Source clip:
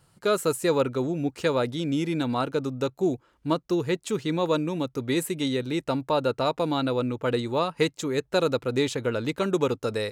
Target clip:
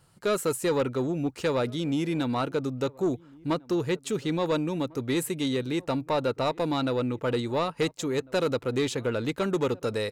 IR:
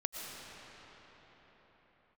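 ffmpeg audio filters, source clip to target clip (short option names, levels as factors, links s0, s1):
-filter_complex "[0:a]asoftclip=type=tanh:threshold=0.119,asplit=2[s0][s1];[s1]adelay=1399,volume=0.0631,highshelf=f=4000:g=-31.5[s2];[s0][s2]amix=inputs=2:normalize=0"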